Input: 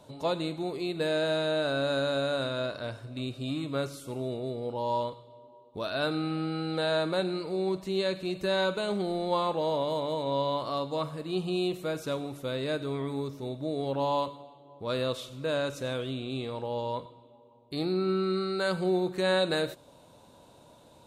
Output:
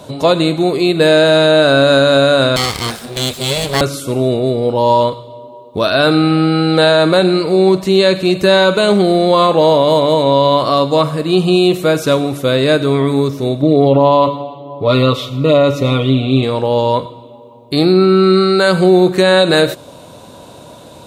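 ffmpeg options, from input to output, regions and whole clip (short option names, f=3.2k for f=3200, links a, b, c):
-filter_complex "[0:a]asettb=1/sr,asplit=3[a][b][c];[a]atrim=end=2.564[d];[b]atrim=start=2.56:end=3.81,asetpts=PTS-STARTPTS,afade=t=in:d=0.004:c=qsin,afade=t=out:st=1.246:d=0.004:c=qsin,aemphasis=mode=production:type=75kf,aeval=exprs='abs(val(0))':c=same[e];[c]atrim=start=3.806[f];[d][e]acrossfade=d=0.004:c1=hsin:c2=qsin[g];[g][f]acrossfade=d=0.004:c1=qsin:c2=hsin,asettb=1/sr,asplit=3[h][i][j];[h]atrim=end=13.624[k];[i]atrim=start=13.62:end=16.43,asetpts=PTS-STARTPTS,afade=t=in:d=0.004:c=qsin,afade=t=out:st=2.806:d=0.004:c=qsin,asuperstop=centerf=1600:order=20:qfactor=4.3,equalizer=f=8.8k:t=o:w=1.5:g=-14,aecho=1:1:7:0.76,atrim=end_sample=123921[l];[j]atrim=start=16.426[m];[k][l]acrossfade=d=0.004:c1=hsin:c2=qsin[n];[n][m]acrossfade=d=0.004:c1=qsin:c2=hsin,highpass=53,bandreject=f=870:w=12,alimiter=level_in=20.5dB:limit=-1dB:release=50:level=0:latency=1,volume=-1dB"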